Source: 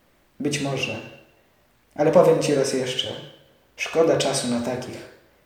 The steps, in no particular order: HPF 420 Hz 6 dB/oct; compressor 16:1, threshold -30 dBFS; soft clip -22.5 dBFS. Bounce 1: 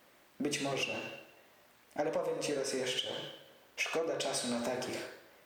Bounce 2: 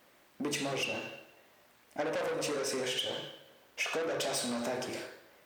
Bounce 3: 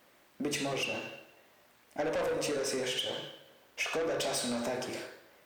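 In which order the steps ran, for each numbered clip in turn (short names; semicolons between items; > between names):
HPF > compressor > soft clip; soft clip > HPF > compressor; HPF > soft clip > compressor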